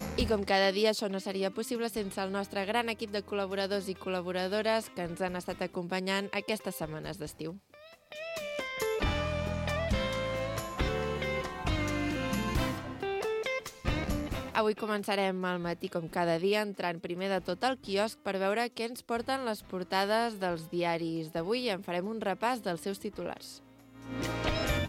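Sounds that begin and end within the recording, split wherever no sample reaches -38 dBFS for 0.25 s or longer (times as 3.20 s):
8.12–23.52 s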